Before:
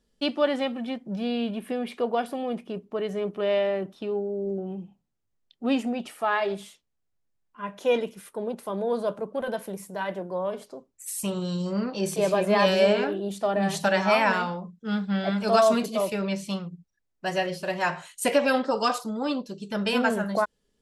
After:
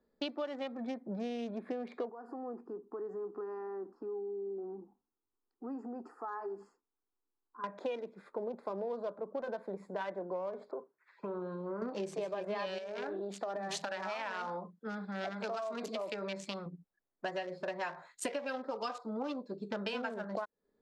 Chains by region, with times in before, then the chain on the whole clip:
2.09–7.64 s: Butterworth band-stop 3.7 kHz, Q 1.6 + static phaser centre 600 Hz, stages 6 + compression 3:1, threshold -40 dBFS
10.71–11.82 s: cabinet simulation 140–2900 Hz, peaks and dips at 260 Hz -7 dB, 410 Hz +8 dB, 1 kHz +8 dB, 1.5 kHz +10 dB + compression 5:1, threshold -34 dBFS
12.78–16.66 s: compression, threshold -28 dBFS + tilt EQ +2 dB/octave
whole clip: local Wiener filter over 15 samples; three-band isolator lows -15 dB, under 230 Hz, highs -23 dB, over 7.1 kHz; compression 12:1, threshold -36 dBFS; trim +1.5 dB

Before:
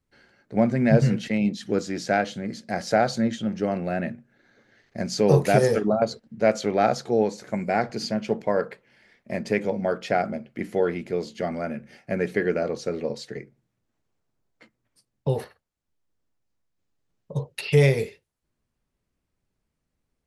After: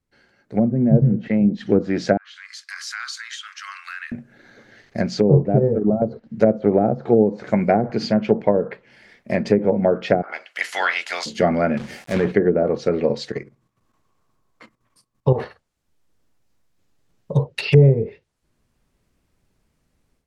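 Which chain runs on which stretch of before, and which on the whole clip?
2.17–4.12 s: Chebyshev high-pass 1.1 kHz, order 6 + compression 2.5:1, threshold -43 dBFS
10.21–11.25 s: spectral peaks clipped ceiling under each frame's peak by 21 dB + high-pass 1.3 kHz + band-stop 2.4 kHz, Q 17
11.77–12.32 s: peaking EQ 90 Hz +5 dB 0.32 oct + transient shaper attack -7 dB, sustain +4 dB + companded quantiser 4-bit
13.31–15.40 s: peaking EQ 1.1 kHz +15 dB 0.27 oct + level held to a coarse grid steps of 11 dB
whole clip: low-pass that closes with the level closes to 410 Hz, closed at -18 dBFS; level rider gain up to 12.5 dB; trim -1 dB

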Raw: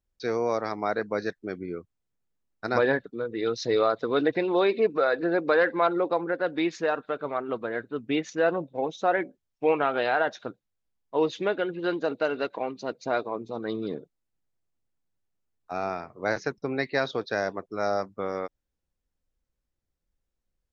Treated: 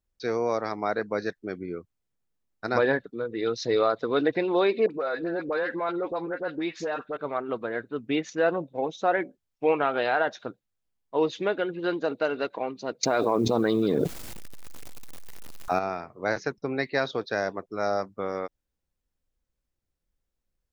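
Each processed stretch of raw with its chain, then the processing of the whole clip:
4.86–7.17 s: compression 2:1, threshold -28 dBFS + phase dispersion highs, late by 47 ms, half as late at 1.1 kHz
13.03–15.79 s: companded quantiser 8-bit + level flattener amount 100%
whole clip: none

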